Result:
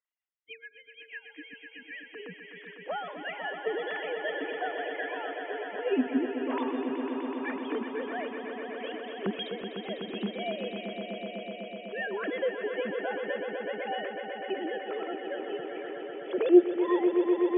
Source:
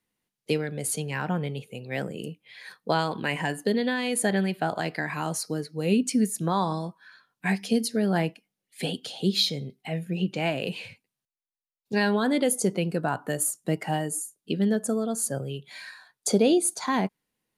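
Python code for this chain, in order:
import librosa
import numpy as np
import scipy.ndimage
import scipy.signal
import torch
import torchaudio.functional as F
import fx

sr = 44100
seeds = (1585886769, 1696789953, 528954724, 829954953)

y = fx.sine_speech(x, sr)
y = fx.spec_box(y, sr, start_s=0.37, length_s=1.77, low_hz=330.0, high_hz=1600.0, gain_db=-24)
y = fx.echo_swell(y, sr, ms=125, loudest=5, wet_db=-9)
y = F.gain(torch.from_numpy(y), -6.5).numpy()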